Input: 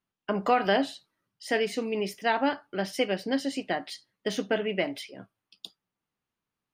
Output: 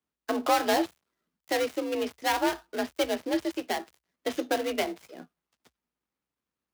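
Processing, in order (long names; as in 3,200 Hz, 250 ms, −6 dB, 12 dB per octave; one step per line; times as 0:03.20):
gap after every zero crossing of 0.17 ms
frequency shifter +56 Hz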